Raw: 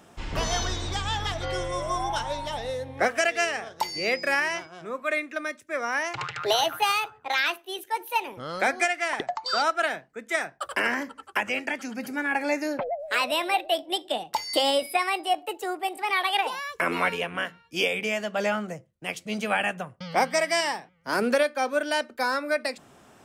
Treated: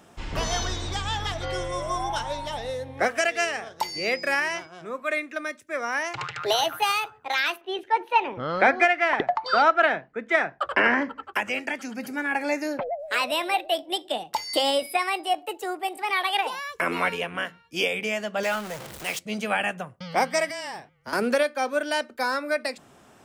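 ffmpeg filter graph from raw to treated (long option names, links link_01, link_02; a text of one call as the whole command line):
ffmpeg -i in.wav -filter_complex "[0:a]asettb=1/sr,asplit=3[link_01][link_02][link_03];[link_01]atrim=end=7.614[link_04];[link_02]atrim=start=7.61:end=11.34,asetpts=PTS-STARTPTS,afade=type=in:duration=0.004:curve=qsin,afade=type=out:start_time=3.726:duration=0.004:curve=qsin,acontrast=58,lowpass=2600[link_05];[link_03]atrim=start=11.336[link_06];[link_04][link_05]acrossfade=duration=0.004:curve1=hsin:curve2=qsin[link_07];[link_07][link_06]acrossfade=duration=0.004:curve1=qsin:curve2=hsin,asettb=1/sr,asplit=3[link_08][link_09][link_10];[link_08]atrim=end=18.434[link_11];[link_09]atrim=start=18.43:end=19.19,asetpts=PTS-STARTPTS,afade=type=in:duration=0.004:curve=qsin,afade=type=out:start_time=0.756:duration=0.004:curve=qsin,aeval=exprs='val(0)+0.5*0.0355*sgn(val(0))':channel_layout=same,lowshelf=frequency=360:gain=-11,acrusher=bits=8:mix=0:aa=0.5[link_12];[link_10]atrim=start=19.186[link_13];[link_11][link_12]acrossfade=duration=0.004:curve1=hsin:curve2=qsin[link_14];[link_14][link_13]acrossfade=duration=0.004:curve1=qsin:curve2=hsin,asettb=1/sr,asplit=3[link_15][link_16][link_17];[link_15]atrim=end=20.494[link_18];[link_16]atrim=start=20.49:end=21.13,asetpts=PTS-STARTPTS,afade=type=in:duration=0.004:curve=qsin,afade=type=out:start_time=0.636:duration=0.004:curve=qsin,afreqshift=-22,acompressor=threshold=-31dB:ratio=6:attack=3.2:release=140:knee=1:detection=peak,asoftclip=type=hard:threshold=-25.5dB[link_19];[link_17]atrim=start=21.126[link_20];[link_18][link_19]acrossfade=duration=0.004:curve1=hsin:curve2=qsin[link_21];[link_21][link_20]acrossfade=duration=0.004:curve1=qsin:curve2=hsin" out.wav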